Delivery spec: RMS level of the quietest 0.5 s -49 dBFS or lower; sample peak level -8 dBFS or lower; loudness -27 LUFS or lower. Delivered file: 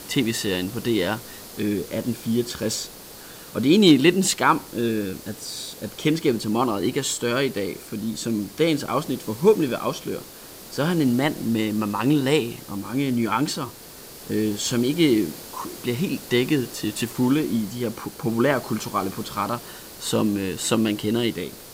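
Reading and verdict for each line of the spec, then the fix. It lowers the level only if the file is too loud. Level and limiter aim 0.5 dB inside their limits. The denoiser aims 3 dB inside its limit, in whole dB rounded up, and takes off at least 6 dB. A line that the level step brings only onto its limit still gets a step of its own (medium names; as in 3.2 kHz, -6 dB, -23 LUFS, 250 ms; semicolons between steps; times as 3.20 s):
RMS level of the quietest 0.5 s -42 dBFS: fail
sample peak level -4.0 dBFS: fail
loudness -23.5 LUFS: fail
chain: noise reduction 6 dB, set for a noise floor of -42 dBFS; trim -4 dB; peak limiter -8.5 dBFS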